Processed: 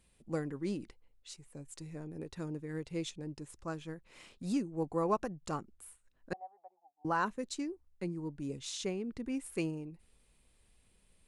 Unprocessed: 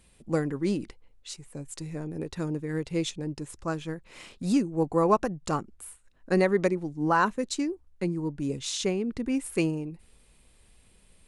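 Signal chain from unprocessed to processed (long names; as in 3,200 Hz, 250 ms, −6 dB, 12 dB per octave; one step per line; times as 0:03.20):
0:06.33–0:07.05: flat-topped band-pass 770 Hz, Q 6.3
level −9 dB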